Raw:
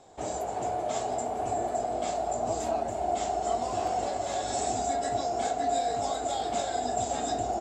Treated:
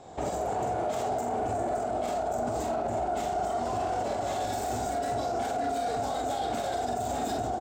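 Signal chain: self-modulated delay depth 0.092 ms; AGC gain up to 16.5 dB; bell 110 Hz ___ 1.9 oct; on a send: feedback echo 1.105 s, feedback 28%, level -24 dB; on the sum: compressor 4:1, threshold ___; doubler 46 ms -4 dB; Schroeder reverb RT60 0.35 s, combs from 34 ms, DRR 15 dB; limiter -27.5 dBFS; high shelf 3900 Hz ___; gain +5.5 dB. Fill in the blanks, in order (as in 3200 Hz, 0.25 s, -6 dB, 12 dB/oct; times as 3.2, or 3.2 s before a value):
+3 dB, -31 dBFS, -6.5 dB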